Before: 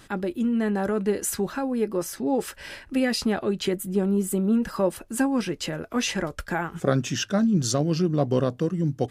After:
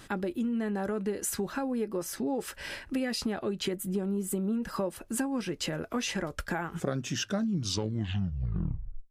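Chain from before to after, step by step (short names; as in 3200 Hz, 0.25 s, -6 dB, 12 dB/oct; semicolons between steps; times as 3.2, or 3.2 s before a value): tape stop at the end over 1.67 s; compressor 4:1, threshold -29 dBFS, peak gain reduction 12 dB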